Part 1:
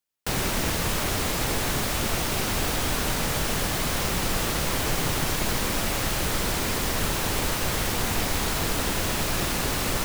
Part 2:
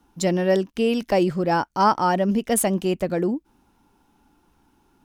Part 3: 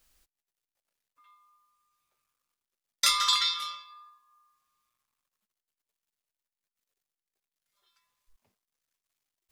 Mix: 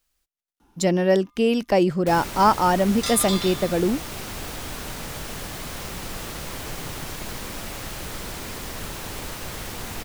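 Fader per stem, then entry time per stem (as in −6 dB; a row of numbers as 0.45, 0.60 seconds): −7.5, +1.0, −5.5 decibels; 1.80, 0.60, 0.00 seconds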